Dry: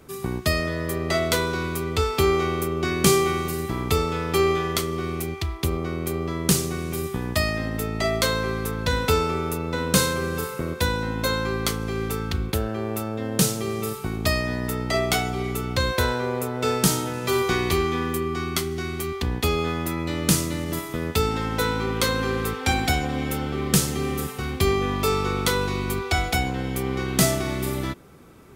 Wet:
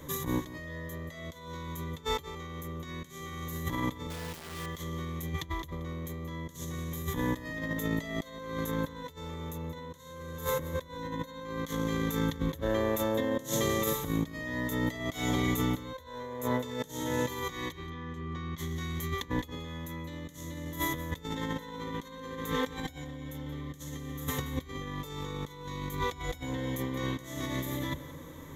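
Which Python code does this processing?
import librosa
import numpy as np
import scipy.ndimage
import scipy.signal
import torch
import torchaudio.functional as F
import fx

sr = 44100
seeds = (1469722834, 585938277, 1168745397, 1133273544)

y = fx.ripple_eq(x, sr, per_octave=1.1, db=14)
y = fx.over_compress(y, sr, threshold_db=-29.0, ratio=-0.5)
y = fx.quant_dither(y, sr, seeds[0], bits=6, dither='none', at=(4.1, 4.66))
y = fx.air_absorb(y, sr, metres=160.0, at=(17.72, 18.58))
y = y + 10.0 ** (-15.0 / 20.0) * np.pad(y, (int(178 * sr / 1000.0), 0))[:len(y)]
y = y * 10.0 ** (-5.5 / 20.0)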